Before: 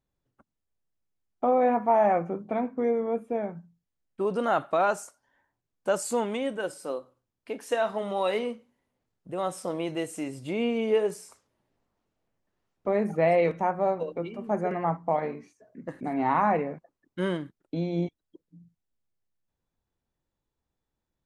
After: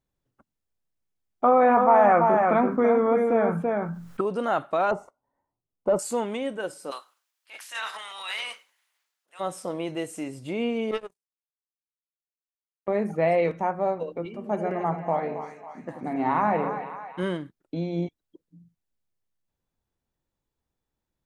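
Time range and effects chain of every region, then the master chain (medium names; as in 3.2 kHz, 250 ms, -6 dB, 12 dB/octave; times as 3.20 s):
1.44–4.21 s: peaking EQ 1.3 kHz +11.5 dB 0.84 oct + delay 333 ms -7 dB + level flattener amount 50%
4.91–5.99 s: waveshaping leveller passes 2 + Savitzky-Golay filter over 65 samples
6.90–9.39 s: spectral peaks clipped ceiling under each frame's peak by 17 dB + high-pass 1.5 kHz + transient shaper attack -11 dB, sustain +7 dB
10.91–12.88 s: power-law waveshaper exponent 3 + band-stop 1.5 kHz, Q 10
14.25–17.23 s: high-pass 50 Hz + two-band feedback delay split 740 Hz, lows 87 ms, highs 275 ms, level -8 dB
whole clip: none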